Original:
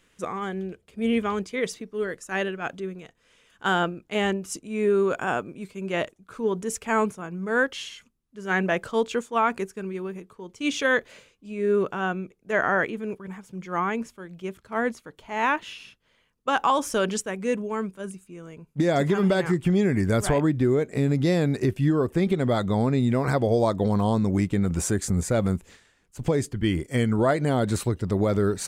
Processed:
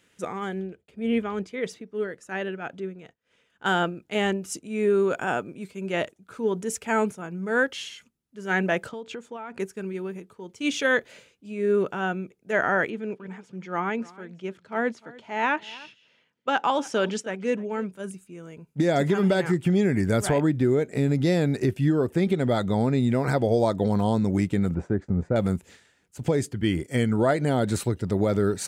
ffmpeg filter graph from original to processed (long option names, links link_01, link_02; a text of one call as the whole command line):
ffmpeg -i in.wav -filter_complex "[0:a]asettb=1/sr,asplit=3[link_01][link_02][link_03];[link_01]atrim=end=0.604[link_04];[link_02]atrim=start=0.6:end=3.66,asetpts=PTS-STARTPTS,afade=type=in:duration=0.004:curve=qsin,afade=type=out:start_time=3.056:duration=0.004:curve=qsin,agate=range=-33dB:threshold=-58dB:ratio=3:release=100:detection=peak,highshelf=frequency=4700:gain=-10.5,tremolo=f=3.6:d=0.34[link_05];[link_03]atrim=start=3.656[link_06];[link_04][link_05]acrossfade=duration=0.004:curve1=hsin:curve2=qsin[link_07];[link_07][link_06]acrossfade=duration=0.004:curve1=qsin:curve2=hsin,asettb=1/sr,asplit=3[link_08][link_09][link_10];[link_08]atrim=end=8.894[link_11];[link_09]atrim=start=8.89:end=9.6,asetpts=PTS-STARTPTS,afade=type=in:duration=0.004:curve=qsin,afade=type=out:start_time=0.706:duration=0.004:curve=qsin,aemphasis=mode=reproduction:type=50kf,acompressor=threshold=-32dB:ratio=10:attack=3.2:release=140:knee=1:detection=peak[link_12];[link_10]atrim=start=9.596[link_13];[link_11][link_12]acrossfade=duration=0.004:curve1=hsin:curve2=qsin[link_14];[link_14][link_13]acrossfade=duration=0.004:curve1=qsin:curve2=hsin,asettb=1/sr,asplit=3[link_15][link_16][link_17];[link_15]atrim=end=12.904[link_18];[link_16]atrim=start=12.9:end=17.92,asetpts=PTS-STARTPTS,afade=type=in:duration=0.004:curve=qsin,afade=type=out:start_time=5.016:duration=0.004:curve=qsin,highpass=140,lowpass=5500,aecho=1:1:300:0.0841,atrim=end_sample=221382[link_19];[link_17]atrim=start=17.916[link_20];[link_18][link_19]acrossfade=duration=0.004:curve1=hsin:curve2=qsin[link_21];[link_21][link_20]acrossfade=duration=0.004:curve1=qsin:curve2=hsin,asettb=1/sr,asplit=3[link_22][link_23][link_24];[link_22]atrim=end=24.744[link_25];[link_23]atrim=start=24.74:end=25.36,asetpts=PTS-STARTPTS,afade=type=in:duration=0.004:curve=qsin,afade=type=out:start_time=0.616:duration=0.004:curve=qsin,lowpass=1200,agate=range=-33dB:threshold=-38dB:ratio=3:release=100:detection=peak[link_26];[link_24]atrim=start=25.356[link_27];[link_25][link_26]acrossfade=duration=0.004:curve1=hsin:curve2=qsin[link_28];[link_28][link_27]acrossfade=duration=0.004:curve1=qsin:curve2=hsin,highpass=80,bandreject=frequency=1100:width=7.4" out.wav